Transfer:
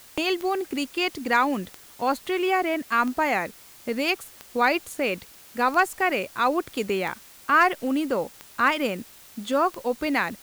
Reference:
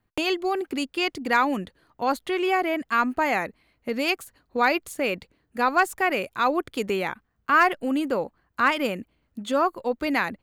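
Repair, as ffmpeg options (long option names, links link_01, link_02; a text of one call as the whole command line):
ffmpeg -i in.wav -af "adeclick=threshold=4,afwtdn=0.0035" out.wav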